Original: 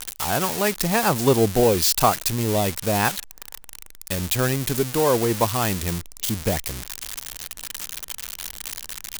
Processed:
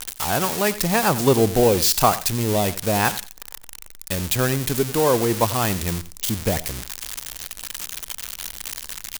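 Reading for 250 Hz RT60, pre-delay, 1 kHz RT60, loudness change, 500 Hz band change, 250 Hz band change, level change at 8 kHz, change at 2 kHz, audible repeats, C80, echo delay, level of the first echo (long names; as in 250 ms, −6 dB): no reverb audible, no reverb audible, no reverb audible, +1.0 dB, +1.0 dB, +1.0 dB, +1.0 dB, +1.0 dB, 2, no reverb audible, 91 ms, −16.0 dB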